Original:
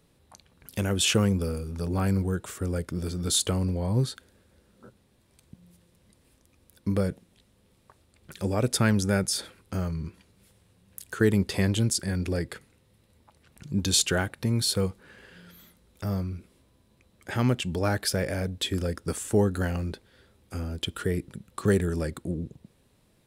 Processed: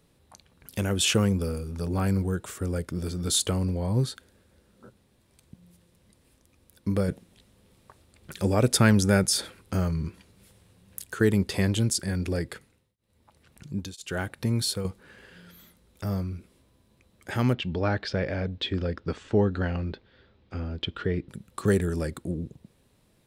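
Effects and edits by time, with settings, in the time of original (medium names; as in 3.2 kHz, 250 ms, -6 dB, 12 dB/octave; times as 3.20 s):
7.08–11.05 s: gain +3.5 dB
12.47–14.85 s: tremolo of two beating tones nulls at 1 Hz
17.53–21.29 s: low-pass 4.3 kHz 24 dB/octave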